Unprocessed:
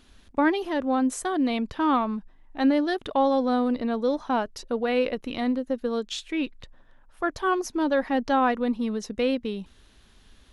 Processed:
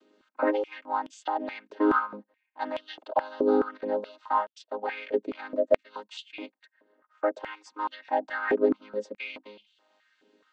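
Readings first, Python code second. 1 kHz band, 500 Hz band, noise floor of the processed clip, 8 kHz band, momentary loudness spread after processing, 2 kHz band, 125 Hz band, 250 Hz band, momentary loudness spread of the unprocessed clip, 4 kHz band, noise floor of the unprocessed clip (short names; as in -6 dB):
-3.0 dB, -1.5 dB, -78 dBFS, under -15 dB, 16 LU, -3.0 dB, n/a, -8.5 dB, 8 LU, -9.0 dB, -57 dBFS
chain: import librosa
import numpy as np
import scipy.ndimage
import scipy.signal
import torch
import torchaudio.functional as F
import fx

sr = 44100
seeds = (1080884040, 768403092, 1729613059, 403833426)

y = fx.chord_vocoder(x, sr, chord='major triad', root=56)
y = fx.filter_held_highpass(y, sr, hz=4.7, low_hz=410.0, high_hz=3100.0)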